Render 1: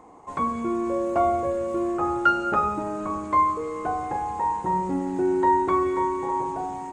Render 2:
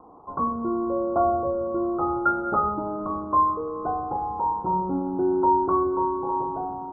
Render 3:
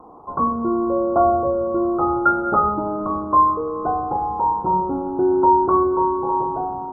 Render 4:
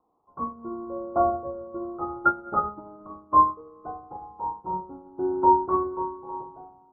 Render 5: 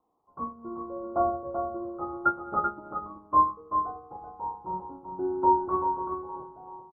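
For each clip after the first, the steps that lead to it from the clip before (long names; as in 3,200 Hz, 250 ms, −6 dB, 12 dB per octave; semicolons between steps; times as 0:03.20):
Butterworth low-pass 1,400 Hz 96 dB per octave
hum removal 92.75 Hz, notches 3; level +5.5 dB
expander for the loud parts 2.5 to 1, over −29 dBFS; level −1.5 dB
single-tap delay 385 ms −6.5 dB; level −3.5 dB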